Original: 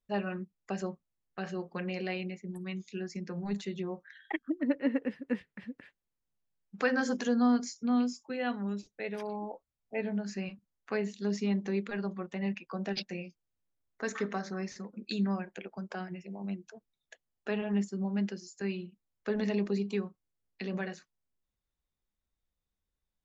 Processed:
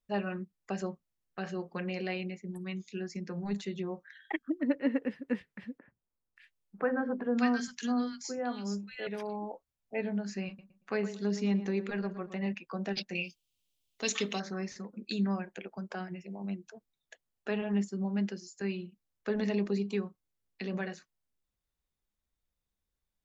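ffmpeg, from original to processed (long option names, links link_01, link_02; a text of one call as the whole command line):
ffmpeg -i in.wav -filter_complex "[0:a]asettb=1/sr,asplit=3[link_01][link_02][link_03];[link_01]atrim=end=5.784[link_04];[link_02]atrim=start=5.78:end=9.07,asetpts=PTS-STARTPTS,afade=type=in:duration=0.004:curve=qsin,afade=type=out:start_time=3.286:duration=0.004:curve=qsin,acrossover=split=180|1600[link_05][link_06][link_07];[link_05]adelay=80[link_08];[link_07]adelay=580[link_09];[link_08][link_06][link_09]amix=inputs=3:normalize=0,atrim=end_sample=145089[link_10];[link_03]atrim=start=9.066[link_11];[link_04][link_10]acrossfade=duration=0.004:curve1=hsin:curve2=qsin[link_12];[link_12][link_11]acrossfade=duration=0.004:curve1=qsin:curve2=hsin,asettb=1/sr,asplit=3[link_13][link_14][link_15];[link_13]atrim=end=10.474[link_16];[link_14]atrim=start=10.47:end=12.52,asetpts=PTS-STARTPTS,afade=type=in:duration=0.004:curve=qsin,afade=type=out:start_time=2.046:duration=0.004:curve=qsin,asplit=2[link_17][link_18];[link_18]adelay=115,lowpass=frequency=2000:poles=1,volume=-11dB,asplit=2[link_19][link_20];[link_20]adelay=115,lowpass=frequency=2000:poles=1,volume=0.3,asplit=2[link_21][link_22];[link_22]adelay=115,lowpass=frequency=2000:poles=1,volume=0.3[link_23];[link_17][link_19][link_21][link_23]amix=inputs=4:normalize=0,atrim=end_sample=90405[link_24];[link_15]atrim=start=12.516[link_25];[link_16][link_24]acrossfade=duration=0.004:curve1=hsin:curve2=qsin[link_26];[link_26][link_25]acrossfade=duration=0.004:curve1=qsin:curve2=hsin,asettb=1/sr,asplit=3[link_27][link_28][link_29];[link_27]atrim=end=13.154[link_30];[link_28]atrim=start=13.15:end=14.4,asetpts=PTS-STARTPTS,afade=type=in:duration=0.004:curve=qsin,afade=type=out:start_time=1.246:duration=0.004:curve=qsin,highshelf=frequency=2200:width_type=q:width=3:gain=10.5[link_31];[link_29]atrim=start=14.396[link_32];[link_30][link_31]acrossfade=duration=0.004:curve1=hsin:curve2=qsin[link_33];[link_33][link_32]acrossfade=duration=0.004:curve1=qsin:curve2=hsin" out.wav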